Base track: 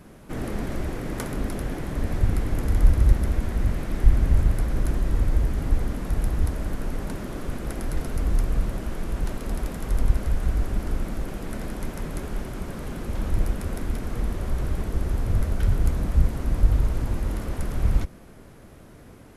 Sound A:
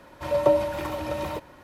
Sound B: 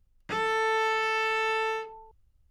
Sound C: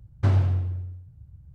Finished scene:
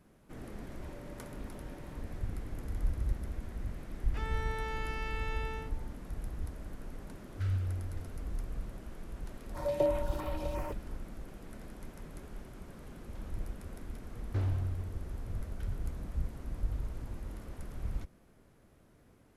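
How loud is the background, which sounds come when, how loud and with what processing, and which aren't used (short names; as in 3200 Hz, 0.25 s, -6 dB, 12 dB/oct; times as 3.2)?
base track -15.5 dB
0.62 add A -15.5 dB + compressor, threshold -38 dBFS
3.85 add B -13.5 dB
7.17 add C -11 dB + FFT band-reject 100–1200 Hz
9.34 add A -8 dB + stepped notch 5.8 Hz 910–6600 Hz
14.11 add C -10.5 dB + hard clip -17 dBFS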